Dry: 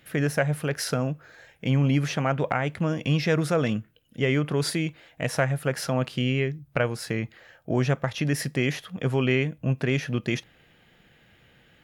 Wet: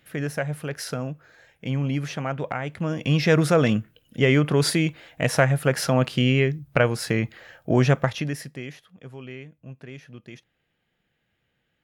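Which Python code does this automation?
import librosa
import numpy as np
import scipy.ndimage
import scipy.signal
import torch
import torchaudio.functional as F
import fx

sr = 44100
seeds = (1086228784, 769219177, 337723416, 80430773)

y = fx.gain(x, sr, db=fx.line((2.67, -3.5), (3.33, 5.0), (8.04, 5.0), (8.43, -8.0), (8.97, -16.0)))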